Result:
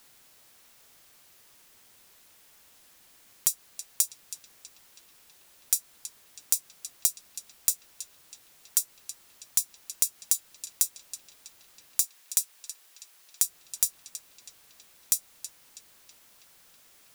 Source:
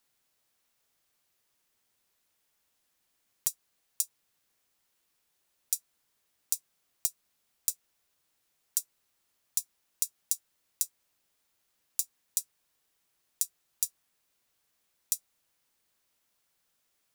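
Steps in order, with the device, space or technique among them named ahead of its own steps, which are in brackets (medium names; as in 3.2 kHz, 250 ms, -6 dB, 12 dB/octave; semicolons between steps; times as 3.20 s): 12.02–13.42 s: high-pass 750 Hz 6 dB/octave; band-passed feedback delay 324 ms, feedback 74%, band-pass 2.4 kHz, level -19 dB; loud club master (compression 2.5:1, threshold -29 dBFS, peak gain reduction 4.5 dB; hard clipper -11 dBFS, distortion -12 dB; loudness maximiser +19 dB); trim -1 dB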